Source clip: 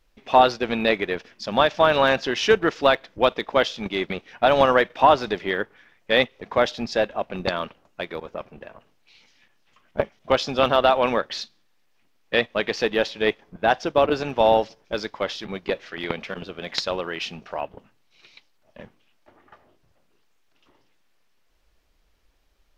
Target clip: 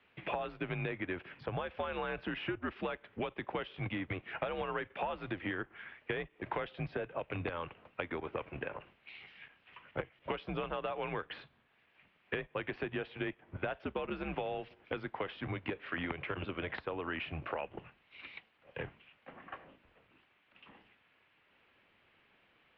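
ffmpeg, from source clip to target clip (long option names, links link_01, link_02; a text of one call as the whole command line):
ffmpeg -i in.wav -filter_complex "[0:a]equalizer=frequency=85:width=0.98:gain=4.5,acrossover=split=110[link_01][link_02];[link_02]acompressor=threshold=-33dB:ratio=4[link_03];[link_01][link_03]amix=inputs=2:normalize=0,crystalizer=i=6:c=0,acrossover=split=120|1600[link_04][link_05][link_06];[link_04]acompressor=threshold=-55dB:ratio=4[link_07];[link_05]acompressor=threshold=-36dB:ratio=4[link_08];[link_06]acompressor=threshold=-44dB:ratio=4[link_09];[link_07][link_08][link_09]amix=inputs=3:normalize=0,highpass=frequency=150:width_type=q:width=0.5412,highpass=frequency=150:width_type=q:width=1.307,lowpass=frequency=2900:width_type=q:width=0.5176,lowpass=frequency=2900:width_type=q:width=0.7071,lowpass=frequency=2900:width_type=q:width=1.932,afreqshift=-84,volume=1dB" out.wav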